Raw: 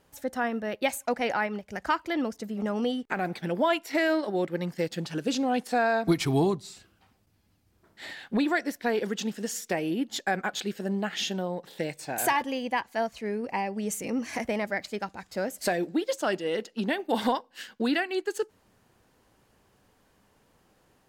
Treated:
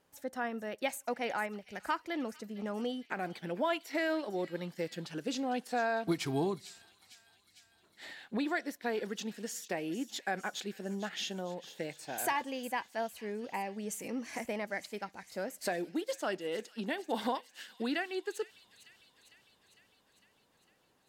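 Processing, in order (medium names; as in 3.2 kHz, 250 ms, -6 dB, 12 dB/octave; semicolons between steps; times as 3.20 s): bass shelf 88 Hz -12 dB; on a send: feedback echo behind a high-pass 453 ms, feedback 67%, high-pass 3 kHz, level -12.5 dB; on the sum: trim -7 dB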